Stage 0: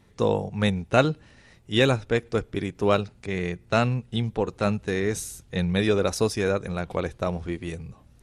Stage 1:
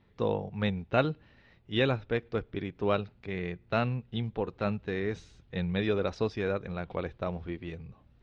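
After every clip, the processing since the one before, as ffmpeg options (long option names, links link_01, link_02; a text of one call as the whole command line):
ffmpeg -i in.wav -af "lowpass=frequency=4000:width=0.5412,lowpass=frequency=4000:width=1.3066,volume=-6.5dB" out.wav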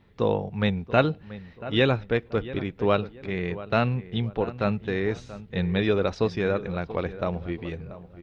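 ffmpeg -i in.wav -filter_complex "[0:a]asplit=2[link_01][link_02];[link_02]adelay=683,lowpass=frequency=1900:poles=1,volume=-15dB,asplit=2[link_03][link_04];[link_04]adelay=683,lowpass=frequency=1900:poles=1,volume=0.34,asplit=2[link_05][link_06];[link_06]adelay=683,lowpass=frequency=1900:poles=1,volume=0.34[link_07];[link_01][link_03][link_05][link_07]amix=inputs=4:normalize=0,volume=5.5dB" out.wav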